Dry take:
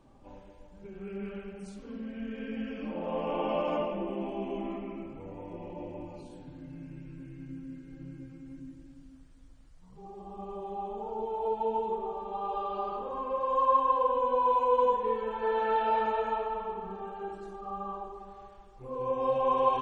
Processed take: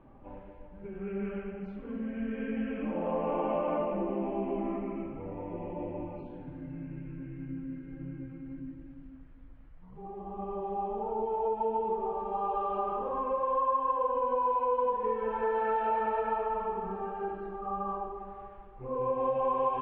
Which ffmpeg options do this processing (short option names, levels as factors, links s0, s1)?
-filter_complex "[0:a]asettb=1/sr,asplit=3[s0][s1][s2];[s0]atrim=end=3.114[s3];[s1]atrim=start=3.11:end=4.96,asetpts=PTS-STARTPTS,afade=t=in:d=0.004:c=qsin,afade=t=out:st=1.846:d=0.004:c=qsin,lowpass=2700[s4];[s2]atrim=start=4.956[s5];[s3][s4]acrossfade=d=0.004:c1=hsin:c2=qsin[s6];[s6][s5]acrossfade=d=0.004:c1=qsin:c2=hsin,lowpass=f=2400:w=0.5412,lowpass=f=2400:w=1.3066,acompressor=threshold=0.0282:ratio=3,volume=1.5"